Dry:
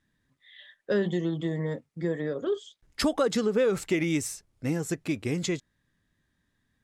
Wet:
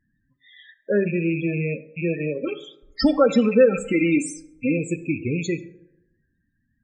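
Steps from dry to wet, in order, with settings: rattle on loud lows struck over -37 dBFS, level -23 dBFS; 2.43–4.78 s: comb 3.8 ms, depth 81%; loudest bins only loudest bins 16; plate-style reverb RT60 0.92 s, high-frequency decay 0.45×, DRR 12.5 dB; trim +4.5 dB

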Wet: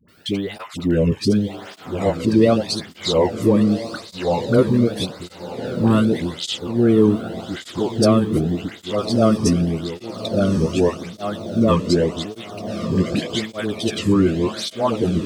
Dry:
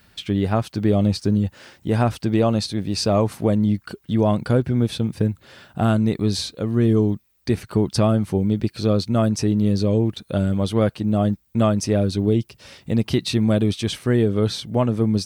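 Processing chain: pitch shift switched off and on -3.5 st, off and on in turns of 556 ms; phase dispersion highs, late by 85 ms, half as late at 680 Hz; on a send: echo that smears into a reverb 1239 ms, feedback 47%, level -10 dB; on the sum: cancelling through-zero flanger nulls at 0.85 Hz, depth 1.5 ms; trim +6 dB

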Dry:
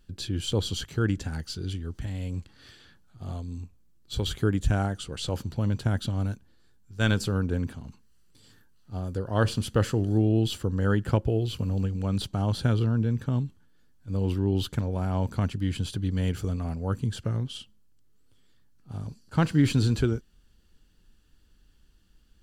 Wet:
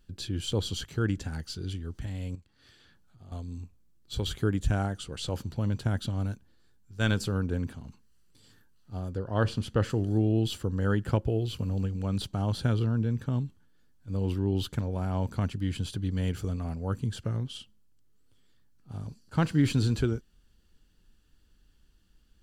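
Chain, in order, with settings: 2.35–3.32 s: compression 2:1, threshold -55 dBFS, peak gain reduction 14 dB; 9.09–9.90 s: treble shelf 7 kHz -12 dB; trim -2.5 dB

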